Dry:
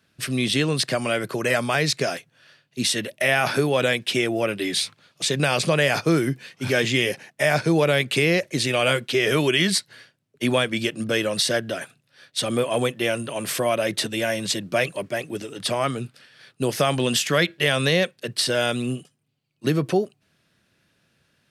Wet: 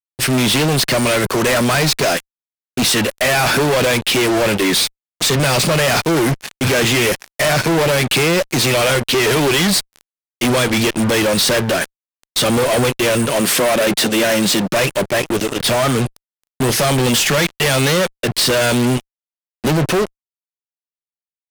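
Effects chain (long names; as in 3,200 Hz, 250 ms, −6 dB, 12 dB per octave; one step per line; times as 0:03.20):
fuzz pedal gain 37 dB, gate −37 dBFS
0:13.40–0:14.73: low shelf with overshoot 140 Hz −6.5 dB, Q 1.5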